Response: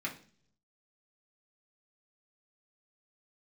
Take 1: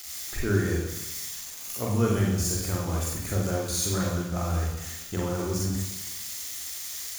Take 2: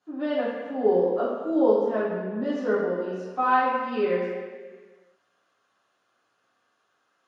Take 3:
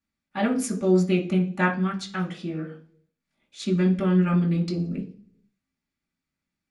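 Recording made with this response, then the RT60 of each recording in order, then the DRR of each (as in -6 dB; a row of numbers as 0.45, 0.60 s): 3; 1.0, 1.7, 0.50 s; -3.0, -11.5, -3.5 dB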